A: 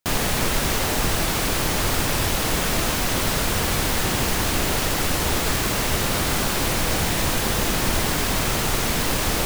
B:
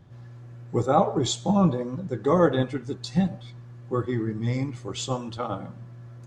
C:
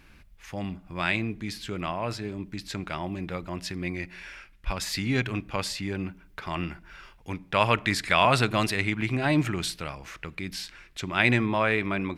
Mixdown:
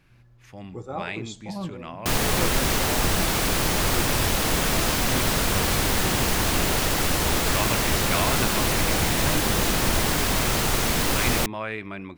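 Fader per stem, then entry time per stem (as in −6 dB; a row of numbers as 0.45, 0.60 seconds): −0.5, −12.5, −7.0 decibels; 2.00, 0.00, 0.00 seconds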